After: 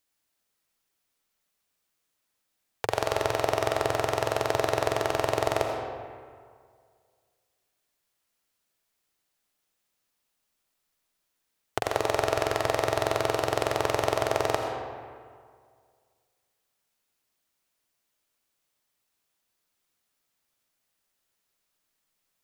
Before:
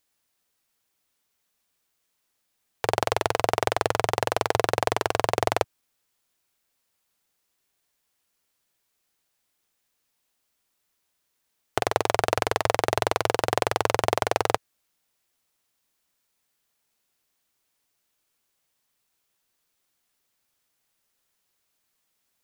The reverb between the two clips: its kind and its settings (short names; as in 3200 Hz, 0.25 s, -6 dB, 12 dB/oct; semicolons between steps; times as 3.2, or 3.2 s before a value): digital reverb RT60 2 s, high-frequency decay 0.6×, pre-delay 45 ms, DRR 3 dB; gain -4 dB